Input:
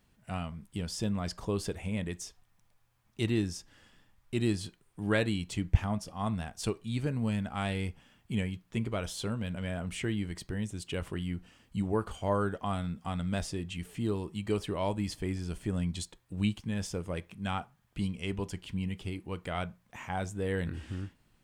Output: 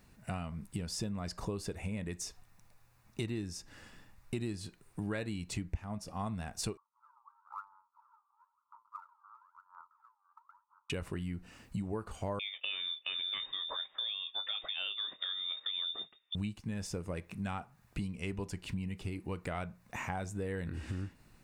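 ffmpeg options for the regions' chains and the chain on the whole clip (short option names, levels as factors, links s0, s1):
-filter_complex "[0:a]asettb=1/sr,asplit=3[s0][s1][s2];[s0]atrim=end=6.774[s3];[s1]atrim=start=6.77:end=10.9,asetpts=PTS-STARTPTS,afade=t=in:d=0.004:c=qsin,afade=t=out:st=4.126:d=0.004:c=qsin,acompressor=threshold=0.00794:ratio=8:attack=3.2:release=140:knee=1:detection=peak,asuperpass=centerf=1100:order=12:qfactor=2.3,aphaser=in_gain=1:out_gain=1:delay=2.6:decay=0.7:speed=1:type=sinusoidal[s4];[s2]atrim=start=10.896[s5];[s3][s4]acrossfade=d=0.004:c1=hsin:c2=qsin[s6];[s6][s5]acrossfade=d=0.004:c1=qsin:c2=hsin,asettb=1/sr,asplit=3[s7][s8][s9];[s7]atrim=end=12.394[s10];[s8]atrim=start=12.39:end=16.35,asetpts=PTS-STARTPTS,afade=t=in:d=0.004:c=qsin,afade=t=out:st=3.956:d=0.004:c=qsin,agate=range=0.282:threshold=0.00447:ratio=16:release=100:detection=peak,asplit=2[s11][s12];[s12]adelay=24,volume=0.224[s13];[s11][s13]amix=inputs=2:normalize=0,atrim=end_sample=174636,lowpass=f=3100:t=q:w=0.5098,lowpass=f=3100:t=q:w=0.6013,lowpass=f=3100:t=q:w=0.9,lowpass=f=3100:t=q:w=2.563,afreqshift=-3700[s14];[s9]atrim=start=16.346[s15];[s10][s14]acrossfade=d=0.004:c1=hsin:c2=qsin[s16];[s16][s15]acrossfade=d=0.004:c1=qsin:c2=hsin,bandreject=f=3200:w=6.1,acompressor=threshold=0.00794:ratio=5,volume=2.11"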